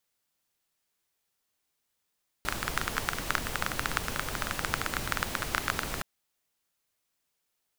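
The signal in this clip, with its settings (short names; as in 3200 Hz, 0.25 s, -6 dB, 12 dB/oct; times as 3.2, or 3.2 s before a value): rain from filtered ticks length 3.57 s, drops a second 15, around 1400 Hz, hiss 0 dB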